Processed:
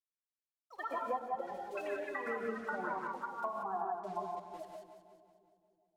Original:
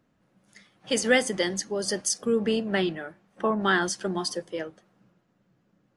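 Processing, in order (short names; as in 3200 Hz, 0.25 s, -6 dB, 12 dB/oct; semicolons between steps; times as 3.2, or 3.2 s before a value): per-bin expansion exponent 3; vocal tract filter a; requantised 12-bit, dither none; treble ducked by the level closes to 980 Hz, closed at -39.5 dBFS; echoes that change speed 0.108 s, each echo +5 st, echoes 3, each echo -6 dB; compressor 5:1, threshold -51 dBFS, peak gain reduction 15.5 dB; on a send: split-band echo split 540 Hz, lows 0.296 s, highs 0.184 s, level -9 dB; on the sum: non-linear reverb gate 0.2 s rising, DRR 1 dB; 1.19–1.88 three-band expander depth 70%; gain +14 dB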